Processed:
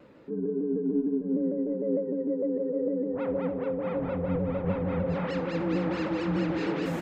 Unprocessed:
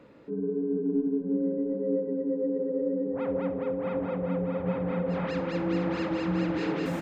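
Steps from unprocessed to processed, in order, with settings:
0:03.98–0:05.13: sub-octave generator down 1 octave, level −5 dB
pitch modulation by a square or saw wave saw down 6.6 Hz, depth 100 cents

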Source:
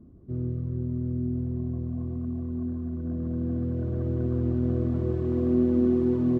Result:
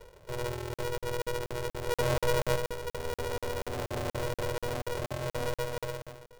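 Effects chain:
fade-out on the ending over 2.12 s
high-pass filter 160 Hz 24 dB per octave
reverb reduction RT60 0.91 s
brickwall limiter −30 dBFS, peak gain reduction 7 dB
0:01.87–0:02.56: hollow resonant body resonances 410/620 Hz, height 15 dB, ringing for 20 ms
feedback echo with a low-pass in the loop 121 ms, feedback 26%, level −9 dB
on a send at −14.5 dB: convolution reverb RT60 4.2 s, pre-delay 45 ms
on the sum: regular buffer underruns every 0.24 s, samples 2,048, zero, from 0:00.74
ring modulator with a square carrier 240 Hz
level +2.5 dB

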